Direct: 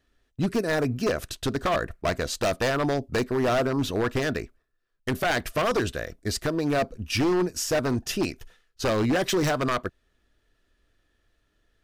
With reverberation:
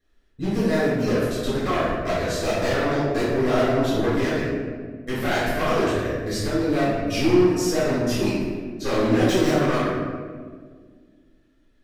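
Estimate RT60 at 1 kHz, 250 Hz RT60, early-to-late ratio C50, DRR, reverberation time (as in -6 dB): 1.5 s, 2.6 s, -2.0 dB, -11.5 dB, 1.8 s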